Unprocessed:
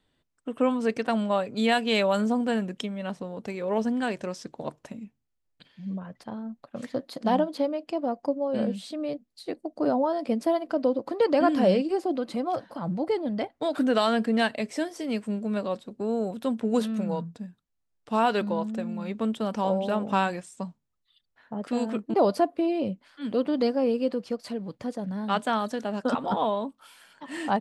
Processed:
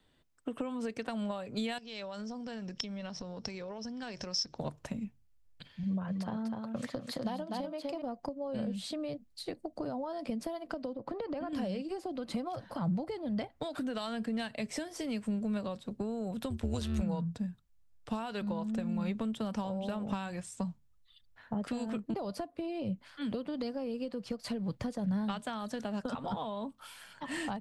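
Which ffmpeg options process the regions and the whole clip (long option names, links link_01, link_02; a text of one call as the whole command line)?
ffmpeg -i in.wav -filter_complex "[0:a]asettb=1/sr,asplit=3[link_01][link_02][link_03];[link_01]atrim=end=1.784[link_04];[link_02]atrim=start=1.78:end=4.58,asetpts=PTS-STARTPTS,afade=type=in:duration=0.004:curve=qsin,afade=type=out:start_time=2.796:duration=0.004:curve=qsin,acompressor=threshold=-39dB:ratio=16:attack=3.2:release=140:knee=1:detection=peak,lowpass=frequency=5400:width_type=q:width=14[link_05];[link_03]atrim=start=4.576[link_06];[link_04][link_05]acrossfade=duration=0.004:curve1=hsin:curve2=qsin[link_07];[link_07][link_06]acrossfade=duration=0.004:curve1=qsin:curve2=hsin,asettb=1/sr,asplit=3[link_08][link_09][link_10];[link_08]atrim=end=5.834[link_11];[link_09]atrim=start=5.83:end=8.02,asetpts=PTS-STARTPTS,afade=type=in:duration=0.004:curve=qsin,afade=type=out:start_time=2.186:duration=0.004:curve=qsin,highpass=frequency=150:poles=1,aecho=1:1:248:0.531,atrim=end_sample=96579[link_12];[link_10]atrim=start=8.016[link_13];[link_11][link_12]acrossfade=duration=0.004:curve1=hsin:curve2=qsin[link_14];[link_14][link_13]acrossfade=duration=0.004:curve1=qsin:curve2=hsin,asettb=1/sr,asplit=3[link_15][link_16][link_17];[link_15]atrim=end=10.934[link_18];[link_16]atrim=start=10.93:end=11.53,asetpts=PTS-STARTPTS,afade=type=in:duration=0.004:curve=qsin,afade=type=out:start_time=0.596:duration=0.004:curve=qsin,lowpass=frequency=1700:poles=1,acompressor=threshold=-26dB:ratio=3:attack=3.2:release=140:knee=1:detection=peak[link_19];[link_17]atrim=start=11.526[link_20];[link_18][link_19]acrossfade=duration=0.004:curve1=hsin:curve2=qsin[link_21];[link_21][link_20]acrossfade=duration=0.004:curve1=qsin:curve2=hsin,asettb=1/sr,asplit=3[link_22][link_23][link_24];[link_22]atrim=end=16.504[link_25];[link_23]atrim=start=16.5:end=17.02,asetpts=PTS-STARTPTS,afade=type=in:duration=0.004:curve=qsin,afade=type=out:start_time=0.516:duration=0.004:curve=qsin,highshelf=frequency=2000:gain=10,acrossover=split=8000[link_26][link_27];[link_27]acompressor=threshold=-52dB:ratio=4:attack=1:release=60[link_28];[link_26][link_28]amix=inputs=2:normalize=0,tremolo=f=140:d=0.75[link_29];[link_24]atrim=start=17.016[link_30];[link_25][link_29]acrossfade=duration=0.004:curve1=hsin:curve2=qsin[link_31];[link_31][link_30]acrossfade=duration=0.004:curve1=qsin:curve2=hsin,acompressor=threshold=-32dB:ratio=6,asubboost=boost=4.5:cutoff=130,acrossover=split=210|3000[link_32][link_33][link_34];[link_33]acompressor=threshold=-37dB:ratio=6[link_35];[link_32][link_35][link_34]amix=inputs=3:normalize=0,volume=2dB" out.wav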